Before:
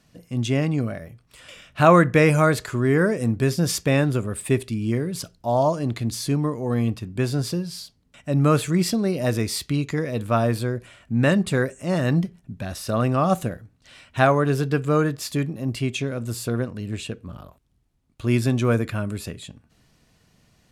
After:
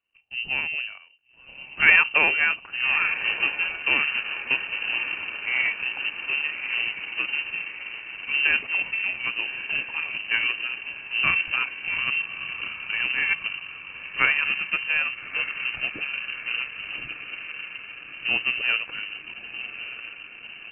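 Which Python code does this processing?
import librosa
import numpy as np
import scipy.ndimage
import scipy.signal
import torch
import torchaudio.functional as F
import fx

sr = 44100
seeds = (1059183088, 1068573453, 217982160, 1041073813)

y = fx.echo_diffused(x, sr, ms=1238, feedback_pct=74, wet_db=-8)
y = fx.power_curve(y, sr, exponent=1.4)
y = fx.freq_invert(y, sr, carrier_hz=2900)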